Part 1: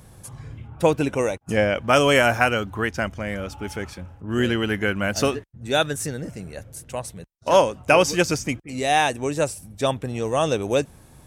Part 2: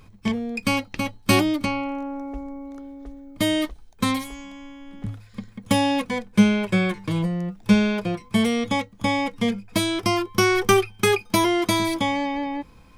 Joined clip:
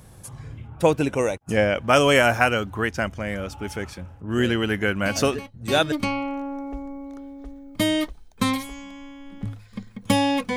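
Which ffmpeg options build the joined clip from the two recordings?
ffmpeg -i cue0.wav -i cue1.wav -filter_complex "[1:a]asplit=2[link_01][link_02];[0:a]apad=whole_dur=10.56,atrim=end=10.56,atrim=end=5.922[link_03];[link_02]atrim=start=1.528:end=6.17[link_04];[link_01]atrim=start=0.64:end=1.53,asetpts=PTS-STARTPTS,volume=-12.5dB,afade=type=in:duration=0.004:curve=hsin,afade=type=out:start_time=0.886:duration=0.004:curve=hsin,adelay=5030[link_05];[link_03][link_04]acrossfade=duration=0.004:curve1=hsin:curve2=hsin[link_06];[link_06][link_05]amix=inputs=2:normalize=0" out.wav

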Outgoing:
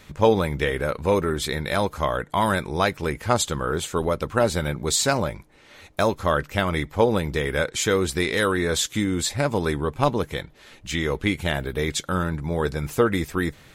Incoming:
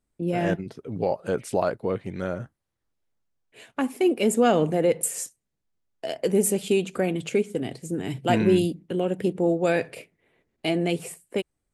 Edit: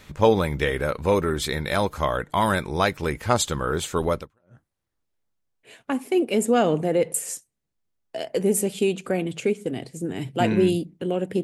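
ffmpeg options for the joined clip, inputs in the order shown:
ffmpeg -i cue0.wav -i cue1.wav -filter_complex "[0:a]apad=whole_dur=11.43,atrim=end=11.43,atrim=end=4.59,asetpts=PTS-STARTPTS[link_01];[1:a]atrim=start=2.08:end=9.32,asetpts=PTS-STARTPTS[link_02];[link_01][link_02]acrossfade=duration=0.4:curve1=exp:curve2=exp" out.wav

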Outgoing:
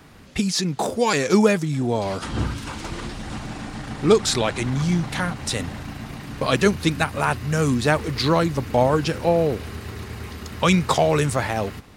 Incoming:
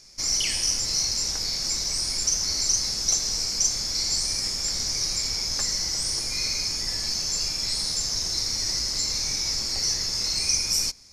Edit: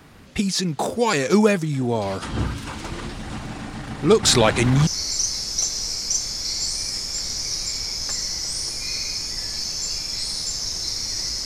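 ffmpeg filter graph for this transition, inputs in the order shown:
ffmpeg -i cue0.wav -i cue1.wav -filter_complex "[0:a]asettb=1/sr,asplit=3[link_01][link_02][link_03];[link_01]atrim=end=4.234[link_04];[link_02]atrim=start=4.23:end=4.87,asetpts=PTS-STARTPTS,afade=type=in:duration=0.004:curve=qsin,afade=type=out:start_time=0.636:duration=0.004:curve=qsin,acontrast=63[link_05];[link_03]atrim=start=4.866[link_06];[link_04][link_05]acrossfade=duration=0.004:curve1=hsin:curve2=qsin[link_07];[link_07][link_06]acrossfade=duration=0.004:curve1=qsin:curve2=hsin,apad=whole_dur=11.45,atrim=end=11.45,atrim=end=4.872[link_08];[1:a]atrim=start=2.368:end=8.95[link_09];[link_08][link_09]acrossfade=duration=0.004:curve1=hsin:curve2=hsin" out.wav

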